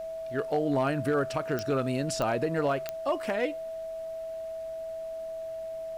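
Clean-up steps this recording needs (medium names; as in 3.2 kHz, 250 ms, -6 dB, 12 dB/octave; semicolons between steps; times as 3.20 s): clip repair -19.5 dBFS; de-click; band-stop 650 Hz, Q 30; expander -29 dBFS, range -21 dB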